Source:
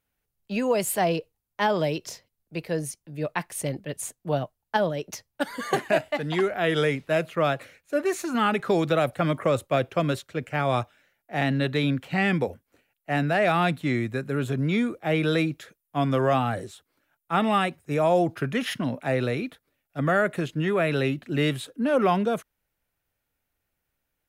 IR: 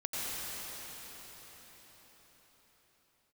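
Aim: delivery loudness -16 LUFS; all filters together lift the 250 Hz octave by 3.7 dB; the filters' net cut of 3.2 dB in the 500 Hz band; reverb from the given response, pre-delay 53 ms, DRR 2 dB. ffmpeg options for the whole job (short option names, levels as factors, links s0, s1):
-filter_complex "[0:a]equalizer=f=250:t=o:g=6.5,equalizer=f=500:t=o:g=-6,asplit=2[s0][s1];[1:a]atrim=start_sample=2205,adelay=53[s2];[s1][s2]afir=irnorm=-1:irlink=0,volume=0.398[s3];[s0][s3]amix=inputs=2:normalize=0,volume=2.51"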